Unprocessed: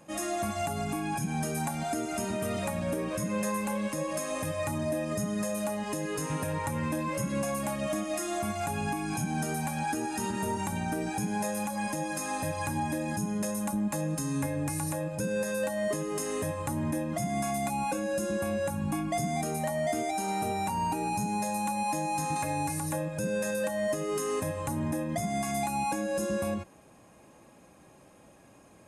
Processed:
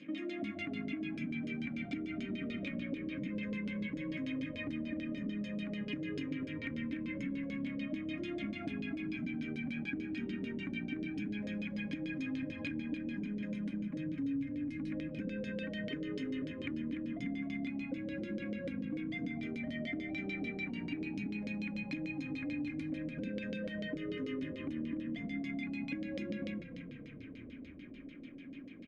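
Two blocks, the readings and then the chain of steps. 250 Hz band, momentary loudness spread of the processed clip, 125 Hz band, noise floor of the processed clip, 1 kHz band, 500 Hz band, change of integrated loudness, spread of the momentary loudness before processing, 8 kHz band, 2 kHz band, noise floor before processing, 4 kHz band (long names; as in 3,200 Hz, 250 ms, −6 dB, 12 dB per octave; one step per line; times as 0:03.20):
−4.0 dB, 2 LU, −10.5 dB, −49 dBFS, −26.5 dB, −14.0 dB, −8.0 dB, 2 LU, below −30 dB, −5.0 dB, −56 dBFS, −7.0 dB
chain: auto-filter low-pass saw down 6.8 Hz 480–5,200 Hz
formant filter i
downward compressor, threshold −53 dBFS, peak gain reduction 21 dB
echo with shifted repeats 294 ms, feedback 63%, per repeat −32 Hz, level −10.5 dB
level +15.5 dB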